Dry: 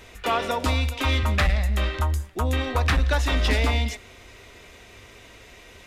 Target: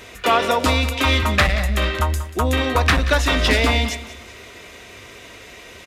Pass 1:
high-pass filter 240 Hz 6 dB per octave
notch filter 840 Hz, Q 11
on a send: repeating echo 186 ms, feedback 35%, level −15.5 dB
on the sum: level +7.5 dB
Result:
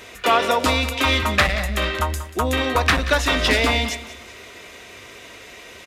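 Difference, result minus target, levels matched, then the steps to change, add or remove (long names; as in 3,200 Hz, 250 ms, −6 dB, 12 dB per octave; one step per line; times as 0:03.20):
125 Hz band −4.0 dB
change: high-pass filter 120 Hz 6 dB per octave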